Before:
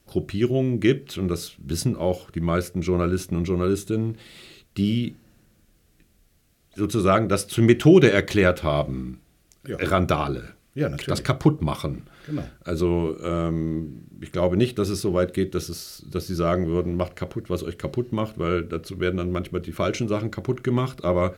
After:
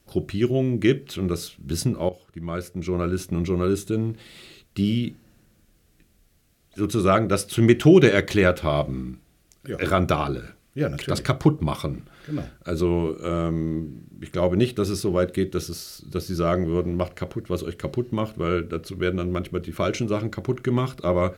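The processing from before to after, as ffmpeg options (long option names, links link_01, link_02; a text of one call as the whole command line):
ffmpeg -i in.wav -filter_complex "[0:a]asplit=2[link_01][link_02];[link_01]atrim=end=2.09,asetpts=PTS-STARTPTS,afade=type=out:start_time=2.086:duration=0.004:curve=hsin:silence=0.177828[link_03];[link_02]atrim=start=2.09,asetpts=PTS-STARTPTS,afade=type=in:duration=1.32:silence=0.177828[link_04];[link_03][link_04]concat=n=2:v=0:a=1" out.wav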